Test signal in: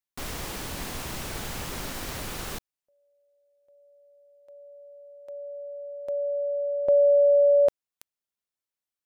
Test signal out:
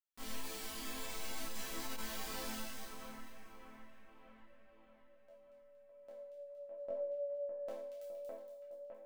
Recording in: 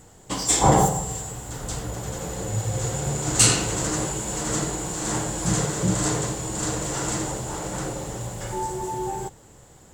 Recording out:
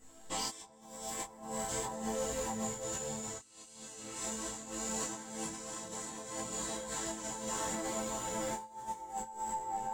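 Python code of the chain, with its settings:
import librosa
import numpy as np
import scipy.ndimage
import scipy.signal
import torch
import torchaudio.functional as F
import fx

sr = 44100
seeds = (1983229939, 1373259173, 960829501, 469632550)

y = fx.low_shelf(x, sr, hz=380.0, db=-2.5)
y = fx.resonator_bank(y, sr, root=57, chord='minor', decay_s=0.68)
y = fx.echo_split(y, sr, split_hz=2500.0, low_ms=608, high_ms=233, feedback_pct=52, wet_db=-4.0)
y = fx.over_compress(y, sr, threshold_db=-51.0, ratio=-0.5)
y = fx.detune_double(y, sr, cents=15)
y = F.gain(torch.from_numpy(y), 15.0).numpy()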